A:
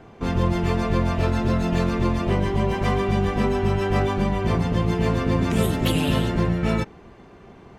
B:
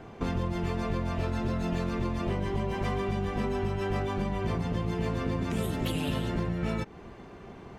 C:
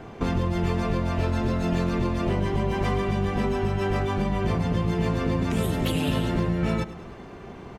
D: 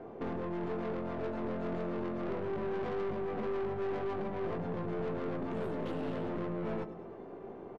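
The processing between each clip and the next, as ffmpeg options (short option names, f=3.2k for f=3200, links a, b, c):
-af "acompressor=threshold=-27dB:ratio=6"
-af "aecho=1:1:103|206|309|412|515:0.168|0.0923|0.0508|0.0279|0.0154,volume=5dB"
-filter_complex "[0:a]bandpass=f=460:t=q:w=1.2:csg=0,aeval=exprs='(tanh(50.1*val(0)+0.4)-tanh(0.4))/50.1':c=same,asplit=2[a][b];[b]adelay=18,volume=-11.5dB[c];[a][c]amix=inputs=2:normalize=0"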